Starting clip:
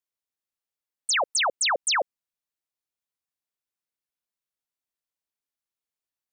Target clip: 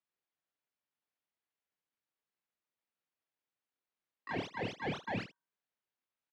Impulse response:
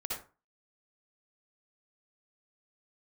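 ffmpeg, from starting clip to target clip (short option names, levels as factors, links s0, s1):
-filter_complex "[0:a]areverse,bandreject=f=50:t=h:w=6,bandreject=f=100:t=h:w=6,bandreject=f=150:t=h:w=6,bandreject=f=200:t=h:w=6,bandreject=f=250:t=h:w=6,bandreject=f=300:t=h:w=6,bandreject=f=350:t=h:w=6,bandreject=f=400:t=h:w=6,bandreject=f=450:t=h:w=6,bandreject=f=500:t=h:w=6,aeval=exprs='val(0)*sin(2*PI*2000*n/s)':c=same,acrossover=split=250[s0][s1];[s1]asoftclip=type=hard:threshold=0.0355[s2];[s0][s2]amix=inputs=2:normalize=0,asplit=2[s3][s4];[s4]asetrate=52444,aresample=44100,atempo=0.840896,volume=0.355[s5];[s3][s5]amix=inputs=2:normalize=0,acrossover=split=180|900[s6][s7][s8];[s6]acompressor=threshold=0.00708:ratio=4[s9];[s7]acompressor=threshold=0.0126:ratio=4[s10];[s8]acompressor=threshold=0.00562:ratio=4[s11];[s9][s10][s11]amix=inputs=3:normalize=0,asetrate=27781,aresample=44100,atempo=1.5874,highpass=110,lowpass=2900,asplit=2[s12][s13];[s13]aecho=0:1:27|76:0.447|0.188[s14];[s12][s14]amix=inputs=2:normalize=0,volume=1.33"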